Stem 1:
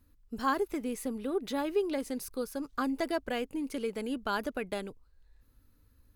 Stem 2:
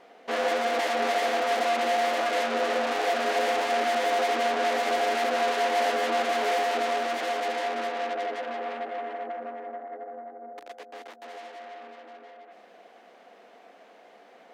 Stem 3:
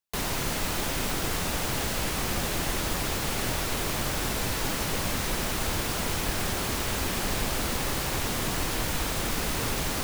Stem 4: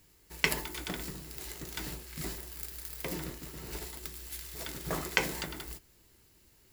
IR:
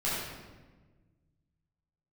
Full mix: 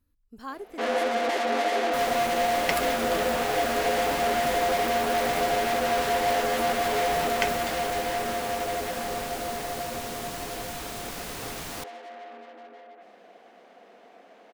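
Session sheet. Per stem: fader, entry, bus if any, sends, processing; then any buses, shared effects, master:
-8.5 dB, 0.00 s, no send, none
-1.0 dB, 0.50 s, no send, bass shelf 350 Hz +5.5 dB
-6.5 dB, 1.80 s, no send, bass shelf 110 Hz -8.5 dB
-1.5 dB, 2.25 s, no send, none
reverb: none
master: none

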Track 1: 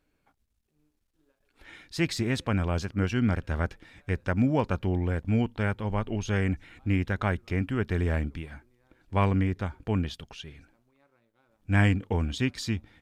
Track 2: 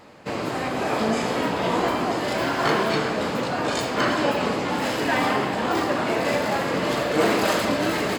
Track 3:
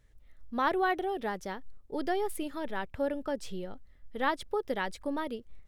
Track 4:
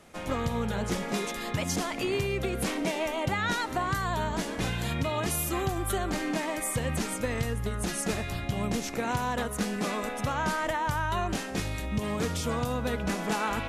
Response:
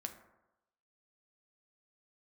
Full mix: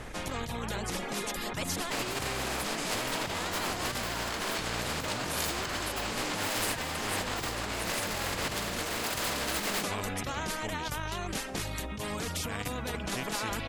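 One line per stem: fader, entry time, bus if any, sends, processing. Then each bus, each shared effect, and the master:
-10.0 dB, 0.75 s, no send, none
-4.0 dB, 1.65 s, no send, bass shelf 400 Hz -8 dB
-17.5 dB, 0.00 s, no send, low-pass 1.1 kHz; level flattener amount 100%
-3.0 dB, 0.00 s, no send, de-hum 48.13 Hz, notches 5; reverb removal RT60 0.66 s; tilt EQ -2 dB/octave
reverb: none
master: compressor with a negative ratio -31 dBFS, ratio -1; spectrum-flattening compressor 2:1

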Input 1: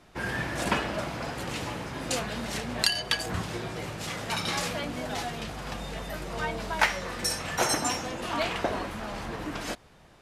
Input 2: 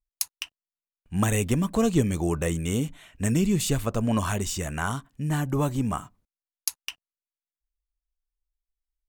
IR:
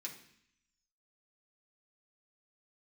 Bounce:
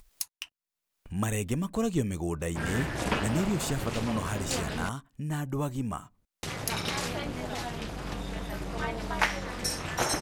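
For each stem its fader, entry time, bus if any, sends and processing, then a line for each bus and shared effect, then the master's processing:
+1.0 dB, 2.40 s, muted 4.89–6.43 s, no send, bass shelf 190 Hz +6 dB; AM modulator 240 Hz, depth 75%
-6.0 dB, 0.00 s, no send, none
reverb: none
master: upward compressor, threshold -33 dBFS

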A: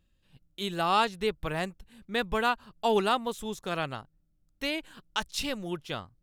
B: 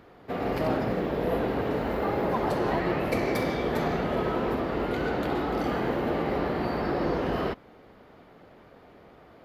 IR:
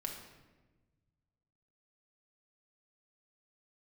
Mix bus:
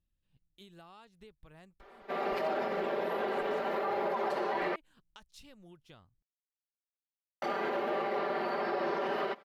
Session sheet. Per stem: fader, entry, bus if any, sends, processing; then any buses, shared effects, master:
-17.5 dB, 0.00 s, no send, bass shelf 200 Hz +7 dB; compression 16:1, threshold -33 dBFS, peak gain reduction 15 dB
-2.5 dB, 1.80 s, muted 4.76–7.42 s, no send, high-pass 460 Hz 12 dB/octave; treble shelf 8.3 kHz -11.5 dB; comb 5.1 ms, depth 91%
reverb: none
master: peak limiter -24 dBFS, peak gain reduction 7.5 dB

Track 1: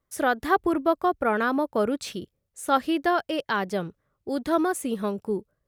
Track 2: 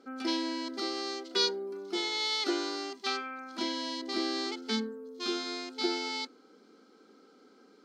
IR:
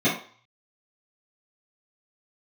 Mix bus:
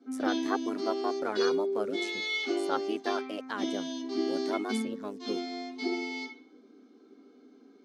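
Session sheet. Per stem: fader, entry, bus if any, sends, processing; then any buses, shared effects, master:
-5.5 dB, 0.00 s, no send, send-on-delta sampling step -43.5 dBFS; reverb removal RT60 0.52 s; AM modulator 100 Hz, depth 80%
-10.0 dB, 0.00 s, send -8.5 dB, none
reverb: on, RT60 0.45 s, pre-delay 3 ms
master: Chebyshev band-pass 270–8500 Hz, order 2

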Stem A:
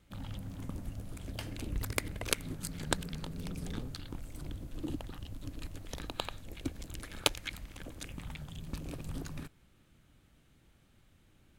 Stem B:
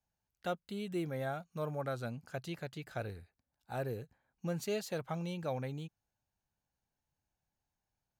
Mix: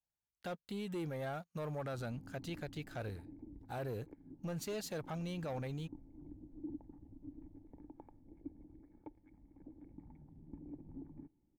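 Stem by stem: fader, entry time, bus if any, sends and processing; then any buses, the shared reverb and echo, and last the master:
-4.5 dB, 1.80 s, no send, peaking EQ 1.8 kHz +12.5 dB 0.59 oct; gain riding within 4 dB 0.5 s; cascade formant filter u
-1.5 dB, 0.00 s, no send, waveshaping leveller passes 2; upward expansion 1.5:1, over -42 dBFS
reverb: none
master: peak limiter -35 dBFS, peak gain reduction 10 dB

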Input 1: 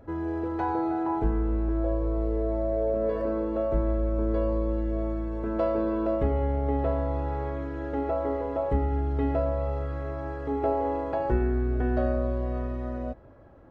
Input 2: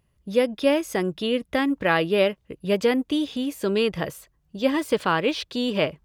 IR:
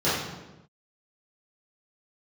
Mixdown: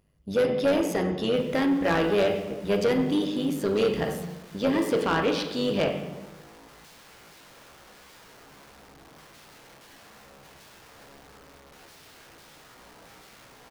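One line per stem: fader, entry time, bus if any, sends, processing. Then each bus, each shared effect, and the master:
-19.0 dB, 1.25 s, send -21.5 dB, integer overflow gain 29 dB
+1.0 dB, 0.00 s, send -19.5 dB, AM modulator 100 Hz, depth 55%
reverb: on, pre-delay 3 ms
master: saturation -17 dBFS, distortion -12 dB

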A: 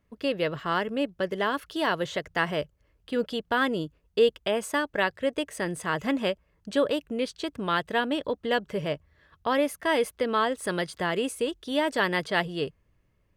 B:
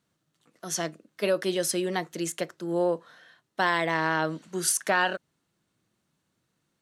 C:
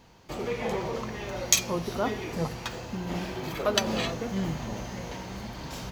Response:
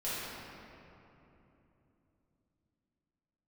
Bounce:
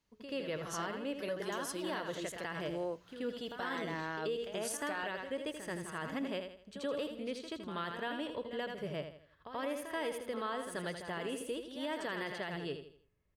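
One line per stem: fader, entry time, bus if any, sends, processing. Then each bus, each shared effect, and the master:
-5.5 dB, 0.00 s, bus A, no send, echo send -5.5 dB, none
-13.0 dB, 0.00 s, no bus, no send, no echo send, none
-6.5 dB, 0.00 s, bus A, no send, no echo send, amplifier tone stack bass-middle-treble 5-5-5
bus A: 0.0 dB, feedback comb 430 Hz, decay 0.74 s, mix 70%; compression 4:1, threshold -47 dBFS, peak gain reduction 13.5 dB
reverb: none
echo: feedback delay 81 ms, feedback 37%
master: peak limiter -28.5 dBFS, peak gain reduction 8.5 dB

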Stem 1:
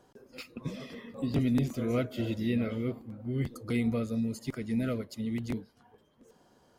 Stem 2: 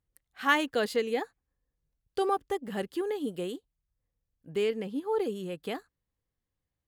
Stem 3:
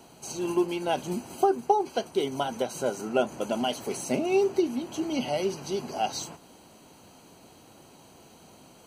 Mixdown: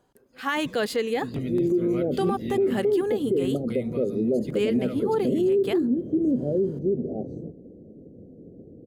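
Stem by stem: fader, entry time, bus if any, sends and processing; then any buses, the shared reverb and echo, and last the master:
-4.0 dB, 0.00 s, no send, band-stop 5.5 kHz, Q 6.1; auto duck -8 dB, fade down 0.60 s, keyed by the second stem
-3.0 dB, 0.00 s, no send, none
+1.5 dB, 1.15 s, no send, elliptic low-pass 500 Hz, stop band 50 dB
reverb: none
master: level rider gain up to 9 dB; peak limiter -16 dBFS, peak gain reduction 11 dB

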